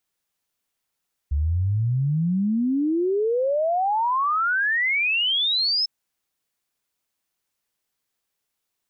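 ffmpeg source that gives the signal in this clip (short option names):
-f lavfi -i "aevalsrc='0.112*clip(min(t,4.55-t)/0.01,0,1)*sin(2*PI*69*4.55/log(5300/69)*(exp(log(5300/69)*t/4.55)-1))':d=4.55:s=44100"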